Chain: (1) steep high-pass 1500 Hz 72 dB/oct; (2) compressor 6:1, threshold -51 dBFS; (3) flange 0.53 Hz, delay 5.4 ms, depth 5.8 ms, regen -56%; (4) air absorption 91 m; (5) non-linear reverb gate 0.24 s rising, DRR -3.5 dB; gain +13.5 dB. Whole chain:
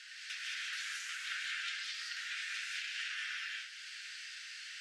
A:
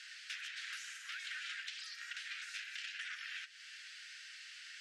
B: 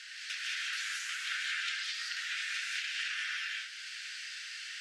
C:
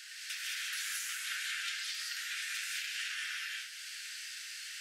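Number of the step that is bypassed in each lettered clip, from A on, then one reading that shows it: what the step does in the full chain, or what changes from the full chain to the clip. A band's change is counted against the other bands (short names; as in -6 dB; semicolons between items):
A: 5, loudness change -5.0 LU; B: 3, loudness change +4.0 LU; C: 4, 8 kHz band +7.0 dB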